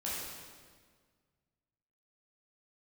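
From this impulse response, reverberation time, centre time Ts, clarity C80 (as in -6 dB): 1.7 s, 0.109 s, 0.5 dB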